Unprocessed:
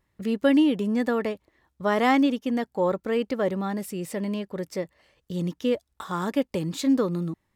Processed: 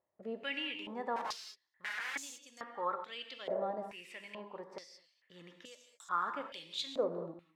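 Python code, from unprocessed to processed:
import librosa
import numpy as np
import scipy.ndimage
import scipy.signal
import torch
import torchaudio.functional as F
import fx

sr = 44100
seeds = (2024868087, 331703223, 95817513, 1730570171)

y = fx.overflow_wrap(x, sr, gain_db=26.0, at=(1.16, 2.16))
y = fx.rev_gated(y, sr, seeds[0], gate_ms=240, shape='flat', drr_db=5.5)
y = fx.filter_held_bandpass(y, sr, hz=2.3, low_hz=640.0, high_hz=6900.0)
y = y * librosa.db_to_amplitude(1.0)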